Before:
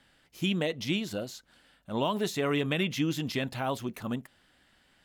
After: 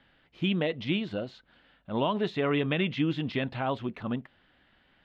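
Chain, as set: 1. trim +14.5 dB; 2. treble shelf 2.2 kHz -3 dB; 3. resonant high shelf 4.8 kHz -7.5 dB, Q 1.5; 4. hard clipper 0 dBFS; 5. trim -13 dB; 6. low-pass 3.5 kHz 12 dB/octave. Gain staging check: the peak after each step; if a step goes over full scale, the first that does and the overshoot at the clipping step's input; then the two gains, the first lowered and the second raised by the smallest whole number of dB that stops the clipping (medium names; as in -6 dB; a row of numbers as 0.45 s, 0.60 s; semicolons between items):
-1.0 dBFS, -2.0 dBFS, -1.5 dBFS, -1.5 dBFS, -14.5 dBFS, -15.0 dBFS; nothing clips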